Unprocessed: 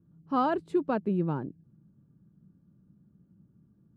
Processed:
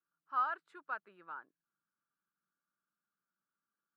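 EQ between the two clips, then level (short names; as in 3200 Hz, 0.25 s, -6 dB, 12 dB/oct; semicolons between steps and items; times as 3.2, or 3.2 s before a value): resonant high-pass 1400 Hz, resonance Q 4.4; high shelf 2400 Hz -9.5 dB; -8.0 dB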